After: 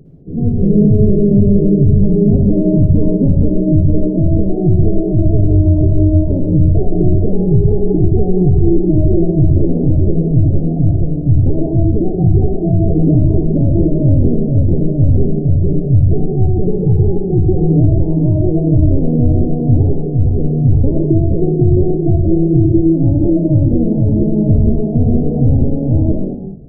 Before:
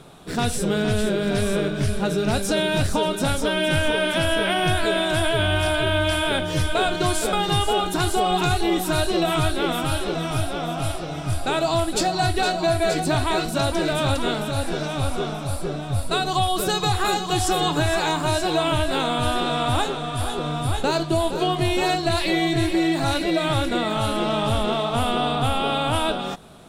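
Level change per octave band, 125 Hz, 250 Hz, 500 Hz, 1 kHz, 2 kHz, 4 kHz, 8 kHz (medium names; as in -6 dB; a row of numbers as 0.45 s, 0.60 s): +16.0 dB, +12.5 dB, +5.0 dB, -13.0 dB, under -40 dB, under -40 dB, under -40 dB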